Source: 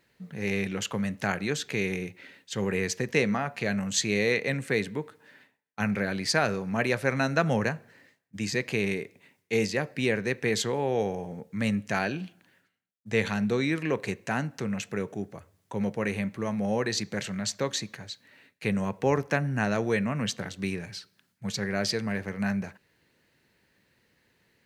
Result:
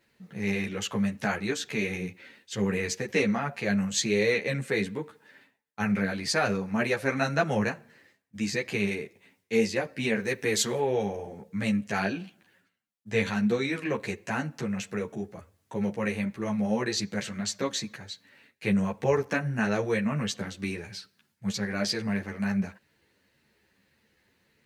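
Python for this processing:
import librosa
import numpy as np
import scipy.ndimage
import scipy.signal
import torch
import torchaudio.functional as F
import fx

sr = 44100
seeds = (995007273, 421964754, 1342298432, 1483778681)

y = fx.high_shelf(x, sr, hz=fx.line((10.19, 8500.0), (10.79, 5200.0)), db=10.0, at=(10.19, 10.79), fade=0.02)
y = fx.ensemble(y, sr)
y = y * librosa.db_to_amplitude(2.5)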